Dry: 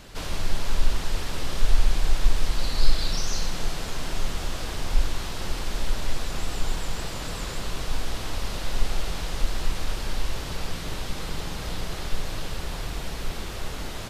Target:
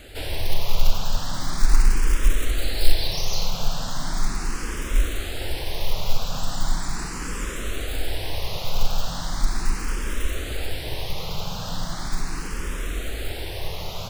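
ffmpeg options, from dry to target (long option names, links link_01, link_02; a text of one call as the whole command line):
ffmpeg -i in.wav -filter_complex "[0:a]acrusher=bits=6:mode=log:mix=0:aa=0.000001,asplit=2[link_01][link_02];[link_02]afreqshift=0.38[link_03];[link_01][link_03]amix=inputs=2:normalize=1,volume=5dB" out.wav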